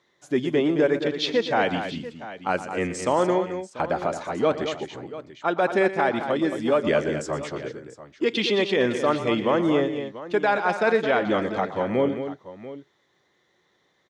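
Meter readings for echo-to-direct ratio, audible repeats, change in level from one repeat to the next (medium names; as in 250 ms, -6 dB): -7.0 dB, 3, no regular repeats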